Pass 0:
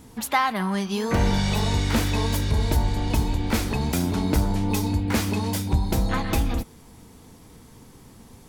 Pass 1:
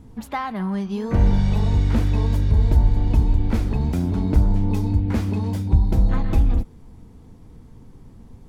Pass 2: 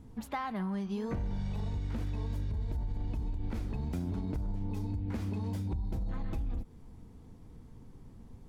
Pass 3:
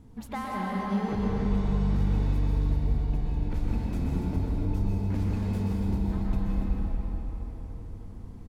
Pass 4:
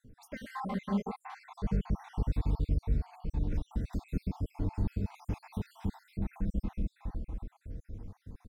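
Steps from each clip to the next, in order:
spectral tilt −3 dB per octave; level −5.5 dB
brickwall limiter −14.5 dBFS, peak gain reduction 9 dB; downward compressor, threshold −24 dBFS, peak gain reduction 7 dB; level −7 dB
single-tap delay 287 ms −9.5 dB; convolution reverb RT60 4.5 s, pre-delay 113 ms, DRR −4.5 dB
time-frequency cells dropped at random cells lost 62%; level −2.5 dB

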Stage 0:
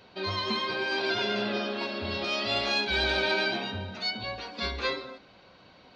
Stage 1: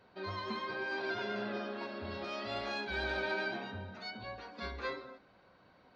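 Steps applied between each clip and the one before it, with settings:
high shelf with overshoot 2,200 Hz −6 dB, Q 1.5
level −8 dB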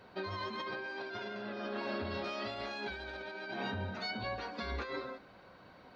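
compressor whose output falls as the input rises −43 dBFS, ratio −1
level +3 dB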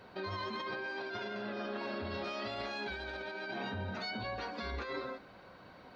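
brickwall limiter −32.5 dBFS, peak gain reduction 6 dB
level +2 dB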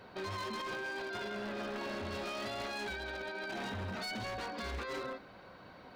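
wave folding −35 dBFS
level +1 dB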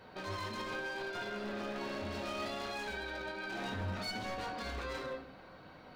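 rectangular room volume 71 cubic metres, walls mixed, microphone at 0.56 metres
level −2.5 dB

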